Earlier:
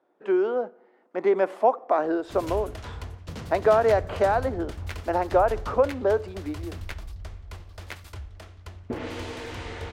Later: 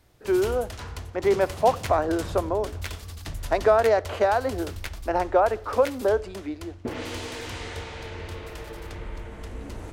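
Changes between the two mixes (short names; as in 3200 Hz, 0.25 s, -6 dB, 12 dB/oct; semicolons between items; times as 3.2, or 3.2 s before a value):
background: entry -2.05 s; master: add high shelf 3800 Hz +9.5 dB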